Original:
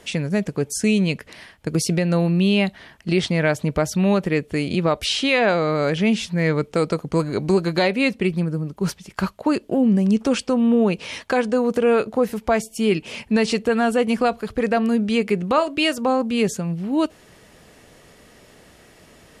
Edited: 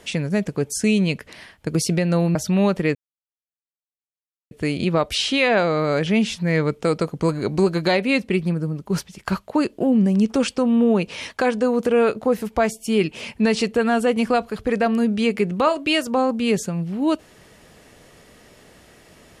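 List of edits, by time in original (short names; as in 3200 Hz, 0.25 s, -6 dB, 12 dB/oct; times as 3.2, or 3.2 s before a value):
2.35–3.82 cut
4.42 insert silence 1.56 s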